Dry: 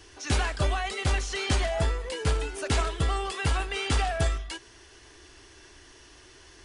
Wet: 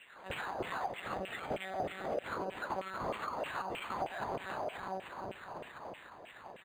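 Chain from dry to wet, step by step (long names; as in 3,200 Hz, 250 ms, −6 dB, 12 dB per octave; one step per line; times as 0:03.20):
convolution reverb RT60 5.5 s, pre-delay 28 ms, DRR 3.5 dB
one-pitch LPC vocoder at 8 kHz 190 Hz
far-end echo of a speakerphone 90 ms, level −11 dB
auto-filter band-pass saw down 3.2 Hz 540–3,100 Hz
parametric band 1,000 Hz +3 dB 0.24 octaves, from 0:01.02 −12 dB, from 0:02.24 +3.5 dB
downward compressor, threshold −38 dBFS, peak gain reduction 11.5 dB
dynamic equaliser 2,200 Hz, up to −6 dB, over −54 dBFS, Q 0.75
linearly interpolated sample-rate reduction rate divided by 8×
level +6.5 dB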